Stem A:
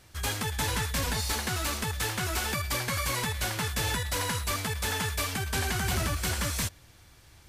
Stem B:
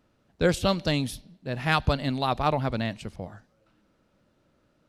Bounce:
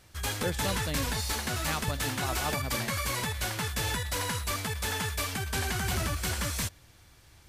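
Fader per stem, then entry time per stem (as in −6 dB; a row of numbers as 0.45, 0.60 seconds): −1.5, −10.5 decibels; 0.00, 0.00 seconds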